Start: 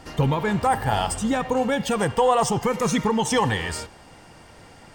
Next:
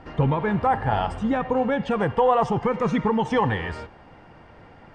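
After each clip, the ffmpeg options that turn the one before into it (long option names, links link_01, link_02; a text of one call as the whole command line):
ffmpeg -i in.wav -af "lowpass=2100" out.wav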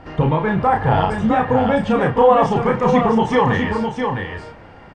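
ffmpeg -i in.wav -filter_complex "[0:a]asplit=2[link_01][link_02];[link_02]adelay=32,volume=-4dB[link_03];[link_01][link_03]amix=inputs=2:normalize=0,aecho=1:1:657:0.531,volume=4dB" out.wav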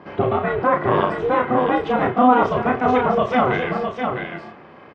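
ffmpeg -i in.wav -af "aeval=exprs='val(0)*sin(2*PI*250*n/s)':channel_layout=same,highpass=140,lowpass=3900,volume=1.5dB" out.wav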